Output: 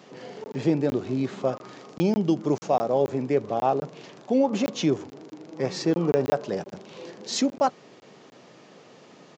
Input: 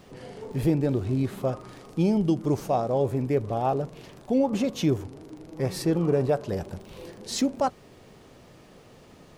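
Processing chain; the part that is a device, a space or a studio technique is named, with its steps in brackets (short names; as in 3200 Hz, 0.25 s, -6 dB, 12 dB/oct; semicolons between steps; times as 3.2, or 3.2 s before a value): call with lost packets (HPF 130 Hz 24 dB/oct; downsampling 16000 Hz; packet loss packets of 20 ms random); HPF 220 Hz 6 dB/oct; gain +3 dB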